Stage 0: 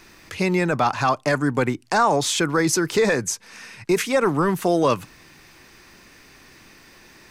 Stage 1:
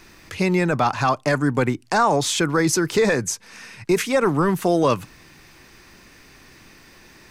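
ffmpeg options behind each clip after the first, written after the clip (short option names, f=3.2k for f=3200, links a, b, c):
-af "lowshelf=f=180:g=4"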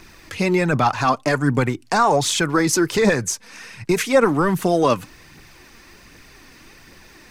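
-af "aphaser=in_gain=1:out_gain=1:delay=4.4:decay=0.4:speed=1.3:type=triangular,volume=1dB"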